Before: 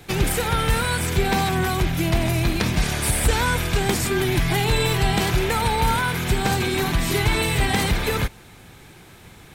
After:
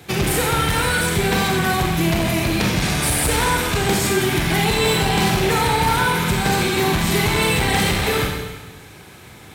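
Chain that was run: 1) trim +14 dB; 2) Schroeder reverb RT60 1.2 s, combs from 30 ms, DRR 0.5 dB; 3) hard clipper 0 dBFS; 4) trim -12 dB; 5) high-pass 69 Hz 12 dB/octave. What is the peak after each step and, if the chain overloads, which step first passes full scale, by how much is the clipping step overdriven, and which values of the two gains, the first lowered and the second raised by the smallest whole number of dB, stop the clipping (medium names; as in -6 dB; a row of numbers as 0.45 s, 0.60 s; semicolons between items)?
+5.0 dBFS, +9.0 dBFS, 0.0 dBFS, -12.0 dBFS, -6.5 dBFS; step 1, 9.0 dB; step 1 +5 dB, step 4 -3 dB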